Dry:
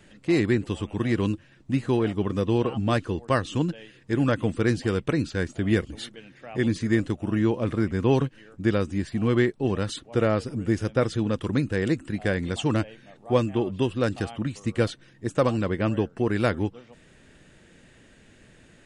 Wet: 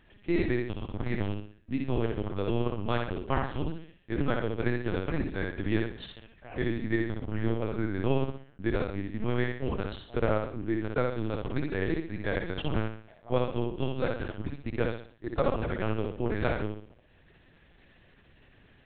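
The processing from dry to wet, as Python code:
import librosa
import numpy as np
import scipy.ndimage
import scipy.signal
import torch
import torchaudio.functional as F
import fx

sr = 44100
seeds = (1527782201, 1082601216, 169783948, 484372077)

y = fx.low_shelf(x, sr, hz=340.0, db=-3.5)
y = fx.transient(y, sr, attack_db=0, sustain_db=-8)
y = fx.echo_feedback(y, sr, ms=64, feedback_pct=41, wet_db=-3)
y = fx.lpc_vocoder(y, sr, seeds[0], excitation='pitch_kept', order=8)
y = y * 10.0 ** (-4.5 / 20.0)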